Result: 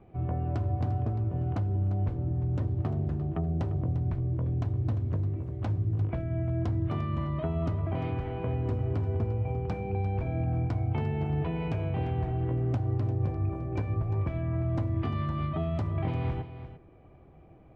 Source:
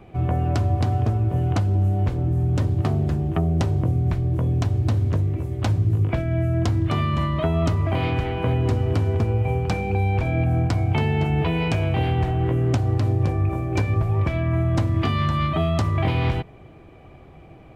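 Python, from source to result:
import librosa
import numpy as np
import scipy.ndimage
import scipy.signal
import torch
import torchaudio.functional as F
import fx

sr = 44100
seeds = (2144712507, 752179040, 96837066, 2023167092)

y = fx.lowpass(x, sr, hz=1100.0, slope=6)
y = y + 10.0 ** (-12.5 / 20.0) * np.pad(y, (int(348 * sr / 1000.0), 0))[:len(y)]
y = F.gain(torch.from_numpy(y), -8.5).numpy()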